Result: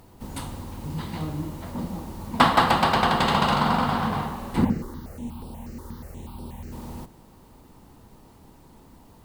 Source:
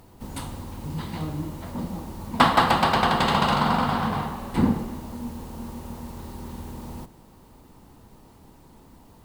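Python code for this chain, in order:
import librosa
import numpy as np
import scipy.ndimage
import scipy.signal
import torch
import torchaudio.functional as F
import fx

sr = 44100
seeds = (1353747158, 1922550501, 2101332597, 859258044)

y = fx.phaser_held(x, sr, hz=8.3, low_hz=690.0, high_hz=6600.0, at=(4.64, 6.71), fade=0.02)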